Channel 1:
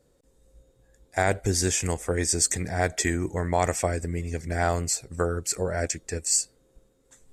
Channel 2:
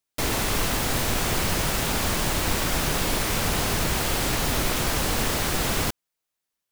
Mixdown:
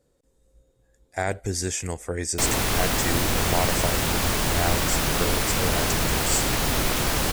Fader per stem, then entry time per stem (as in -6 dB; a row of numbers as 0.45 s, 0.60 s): -3.0 dB, +1.0 dB; 0.00 s, 2.20 s